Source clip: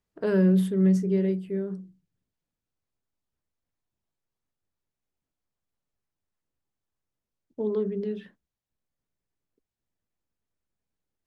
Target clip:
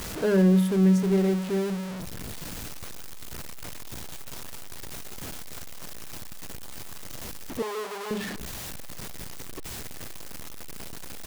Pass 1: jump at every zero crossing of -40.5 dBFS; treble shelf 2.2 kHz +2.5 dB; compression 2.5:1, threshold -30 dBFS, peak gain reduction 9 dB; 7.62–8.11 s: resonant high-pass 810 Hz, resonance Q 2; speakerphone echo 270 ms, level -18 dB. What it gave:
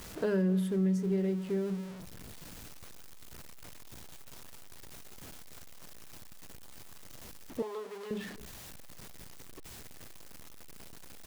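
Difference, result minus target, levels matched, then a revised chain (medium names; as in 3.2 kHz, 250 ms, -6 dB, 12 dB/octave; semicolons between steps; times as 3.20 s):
compression: peak gain reduction +9 dB; jump at every zero crossing: distortion -10 dB
jump at every zero crossing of -29.5 dBFS; treble shelf 2.2 kHz +2.5 dB; 7.62–8.11 s: resonant high-pass 810 Hz, resonance Q 2; speakerphone echo 270 ms, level -18 dB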